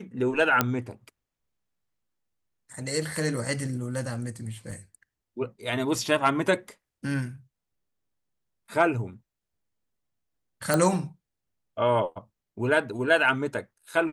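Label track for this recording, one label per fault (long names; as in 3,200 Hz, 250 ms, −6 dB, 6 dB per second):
0.610000	0.610000	click −6 dBFS
4.710000	4.710000	drop-out 4.1 ms
10.740000	10.740000	click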